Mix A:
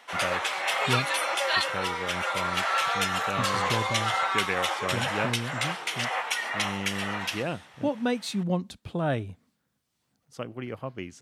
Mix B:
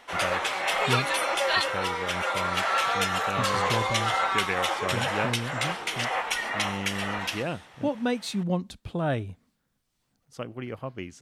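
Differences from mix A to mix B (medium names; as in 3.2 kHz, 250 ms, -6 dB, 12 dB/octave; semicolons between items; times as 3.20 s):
speech: remove high-pass 78 Hz; background: remove high-pass 580 Hz 6 dB/octave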